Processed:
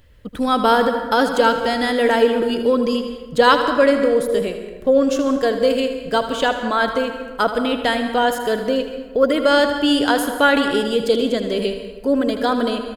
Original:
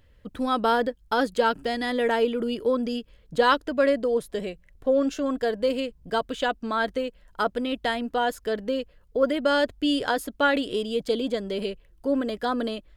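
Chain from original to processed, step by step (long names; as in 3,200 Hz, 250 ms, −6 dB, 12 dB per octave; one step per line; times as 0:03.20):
high-shelf EQ 5,700 Hz +4.5 dB
on a send: single-tap delay 79 ms −11 dB
on the sum: dense smooth reverb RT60 1.3 s, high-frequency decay 0.5×, pre-delay 115 ms, DRR 8.5 dB
level +6.5 dB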